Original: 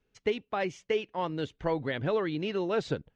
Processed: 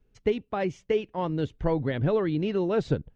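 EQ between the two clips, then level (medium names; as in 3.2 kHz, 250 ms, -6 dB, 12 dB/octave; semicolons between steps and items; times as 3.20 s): tilt EQ -3 dB/octave; treble shelf 5 kHz +8.5 dB; 0.0 dB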